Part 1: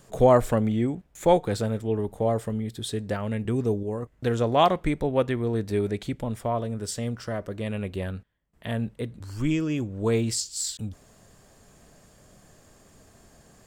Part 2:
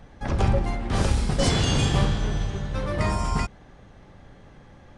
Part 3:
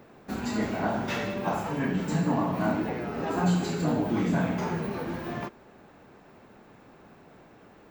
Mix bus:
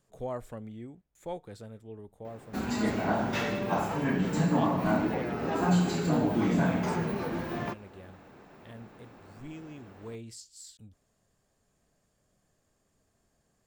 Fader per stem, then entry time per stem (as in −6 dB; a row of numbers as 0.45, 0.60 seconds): −18.5 dB, muted, 0.0 dB; 0.00 s, muted, 2.25 s